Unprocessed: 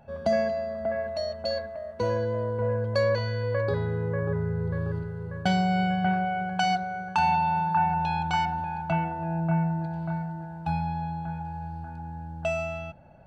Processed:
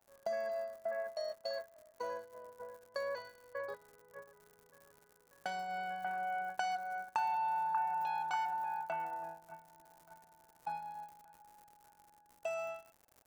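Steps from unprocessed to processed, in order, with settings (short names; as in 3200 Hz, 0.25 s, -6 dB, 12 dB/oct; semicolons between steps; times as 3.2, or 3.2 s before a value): compressor 6:1, threshold -26 dBFS, peak gain reduction 6.5 dB; HPF 860 Hz 12 dB/oct; gate -38 dBFS, range -17 dB; crackle 140/s -44 dBFS; bell 3300 Hz -11.5 dB 1.9 oct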